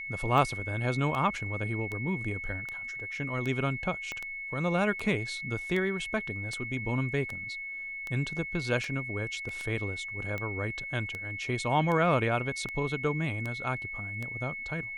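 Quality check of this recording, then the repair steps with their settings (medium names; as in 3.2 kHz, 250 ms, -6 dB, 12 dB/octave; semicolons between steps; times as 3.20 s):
tick 78 rpm
whine 2.2 kHz -36 dBFS
4.12 s: pop -22 dBFS
9.49 s: dropout 2.4 ms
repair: de-click; band-stop 2.2 kHz, Q 30; interpolate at 9.49 s, 2.4 ms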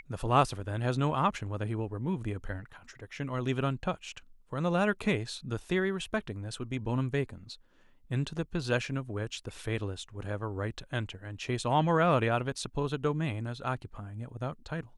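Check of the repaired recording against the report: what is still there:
4.12 s: pop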